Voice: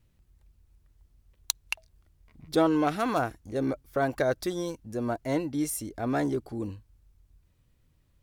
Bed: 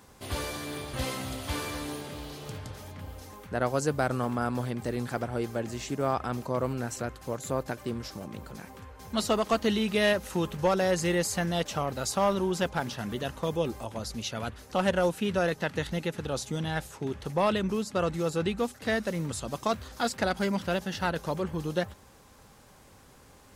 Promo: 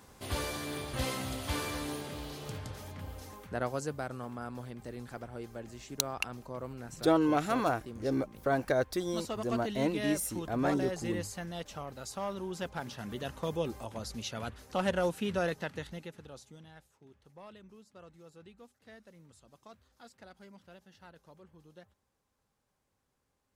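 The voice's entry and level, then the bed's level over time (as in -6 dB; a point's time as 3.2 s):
4.50 s, -2.5 dB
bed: 3.29 s -1.5 dB
4.11 s -11.5 dB
12.29 s -11.5 dB
13.36 s -4.5 dB
15.47 s -4.5 dB
16.89 s -25.5 dB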